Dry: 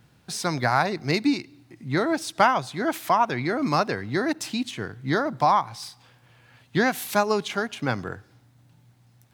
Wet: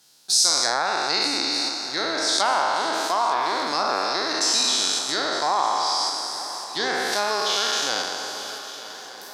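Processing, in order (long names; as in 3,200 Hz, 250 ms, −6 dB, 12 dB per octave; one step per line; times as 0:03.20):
peak hold with a decay on every bin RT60 2.79 s
treble cut that deepens with the level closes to 2,200 Hz, closed at −12 dBFS
high shelf with overshoot 3,300 Hz +13.5 dB, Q 1.5
in parallel at −1 dB: output level in coarse steps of 11 dB
on the sum: Bessel high-pass filter 600 Hz, order 2
on a send: feedback echo with a long and a short gap by turns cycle 1,217 ms, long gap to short 3 to 1, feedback 51%, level −16 dB
on the sum: level −7 dB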